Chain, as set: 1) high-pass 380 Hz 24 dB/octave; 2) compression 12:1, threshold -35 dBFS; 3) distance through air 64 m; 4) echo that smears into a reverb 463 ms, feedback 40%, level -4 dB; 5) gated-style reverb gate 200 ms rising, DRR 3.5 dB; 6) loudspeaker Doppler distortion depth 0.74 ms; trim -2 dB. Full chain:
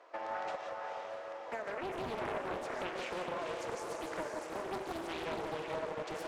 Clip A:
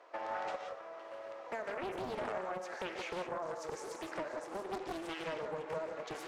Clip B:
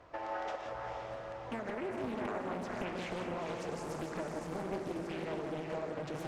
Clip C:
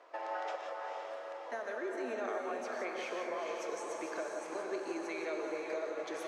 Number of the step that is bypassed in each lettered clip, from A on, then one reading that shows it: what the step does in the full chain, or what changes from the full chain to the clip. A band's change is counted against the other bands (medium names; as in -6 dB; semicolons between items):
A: 4, momentary loudness spread change +2 LU; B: 1, 125 Hz band +8.5 dB; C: 6, 4 kHz band -4.5 dB